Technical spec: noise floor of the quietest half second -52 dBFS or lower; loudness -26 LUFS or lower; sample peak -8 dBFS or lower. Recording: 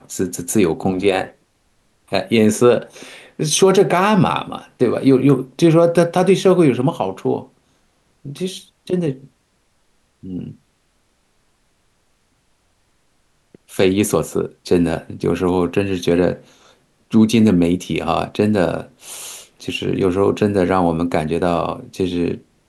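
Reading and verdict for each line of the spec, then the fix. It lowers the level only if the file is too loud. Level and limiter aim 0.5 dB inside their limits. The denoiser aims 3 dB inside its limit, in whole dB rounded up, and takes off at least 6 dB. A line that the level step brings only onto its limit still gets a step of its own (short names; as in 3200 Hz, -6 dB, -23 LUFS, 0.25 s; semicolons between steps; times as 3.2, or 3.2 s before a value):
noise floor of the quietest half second -62 dBFS: OK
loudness -17.5 LUFS: fail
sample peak -2.5 dBFS: fail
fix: gain -9 dB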